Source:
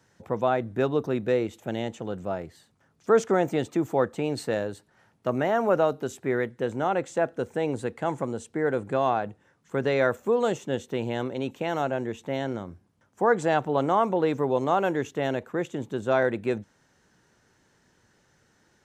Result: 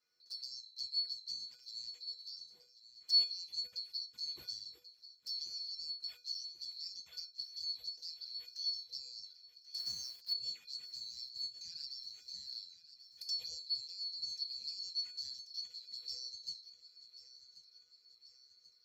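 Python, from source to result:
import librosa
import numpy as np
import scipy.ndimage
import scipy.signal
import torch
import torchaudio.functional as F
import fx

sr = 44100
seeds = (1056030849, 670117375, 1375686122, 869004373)

y = fx.band_swap(x, sr, width_hz=4000)
y = scipy.signal.sosfilt(scipy.signal.butter(4, 50.0, 'highpass', fs=sr, output='sos'), y)
y = fx.high_shelf(y, sr, hz=2600.0, db=-7.0)
y = fx.over_compress(y, sr, threshold_db=-32.0, ratio=-0.5, at=(12.52, 13.29))
y = fx.env_flanger(y, sr, rest_ms=11.3, full_db=-26.0)
y = fx.comb_fb(y, sr, f0_hz=490.0, decay_s=0.26, harmonics='odd', damping=0.0, mix_pct=90)
y = fx.quant_companded(y, sr, bits=6, at=(9.78, 10.33))
y = fx.echo_feedback(y, sr, ms=1086, feedback_pct=55, wet_db=-14.5)
y = fx.band_squash(y, sr, depth_pct=40, at=(14.13, 14.91))
y = y * librosa.db_to_amplitude(6.0)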